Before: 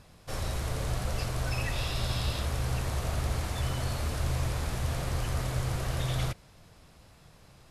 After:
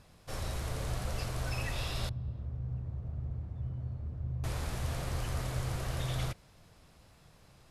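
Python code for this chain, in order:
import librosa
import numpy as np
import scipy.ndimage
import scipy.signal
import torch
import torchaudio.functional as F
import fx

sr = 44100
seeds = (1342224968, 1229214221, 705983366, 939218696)

y = fx.bandpass_q(x, sr, hz=110.0, q=1.2, at=(2.09, 4.44))
y = y * librosa.db_to_amplitude(-4.0)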